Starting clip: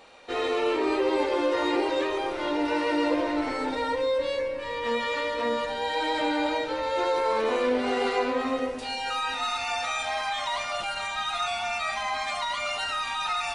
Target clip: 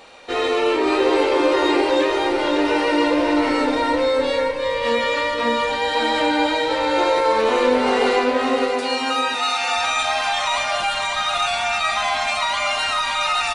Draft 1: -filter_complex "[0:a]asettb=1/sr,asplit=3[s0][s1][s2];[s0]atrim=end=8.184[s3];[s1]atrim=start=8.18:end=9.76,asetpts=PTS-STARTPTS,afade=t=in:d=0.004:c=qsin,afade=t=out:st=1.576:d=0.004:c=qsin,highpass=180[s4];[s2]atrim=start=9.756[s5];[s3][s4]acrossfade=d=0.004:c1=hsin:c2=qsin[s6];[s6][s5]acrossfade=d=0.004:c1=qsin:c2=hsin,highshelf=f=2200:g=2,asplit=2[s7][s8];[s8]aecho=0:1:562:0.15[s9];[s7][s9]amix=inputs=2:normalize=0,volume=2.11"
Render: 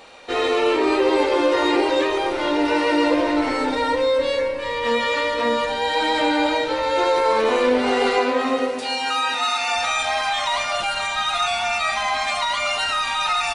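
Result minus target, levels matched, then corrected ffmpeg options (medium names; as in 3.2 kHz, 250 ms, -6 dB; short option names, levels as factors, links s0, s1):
echo-to-direct -11.5 dB
-filter_complex "[0:a]asettb=1/sr,asplit=3[s0][s1][s2];[s0]atrim=end=8.184[s3];[s1]atrim=start=8.18:end=9.76,asetpts=PTS-STARTPTS,afade=t=in:d=0.004:c=qsin,afade=t=out:st=1.576:d=0.004:c=qsin,highpass=180[s4];[s2]atrim=start=9.756[s5];[s3][s4]acrossfade=d=0.004:c1=hsin:c2=qsin[s6];[s6][s5]acrossfade=d=0.004:c1=qsin:c2=hsin,highshelf=f=2200:g=2,asplit=2[s7][s8];[s8]aecho=0:1:562:0.562[s9];[s7][s9]amix=inputs=2:normalize=0,volume=2.11"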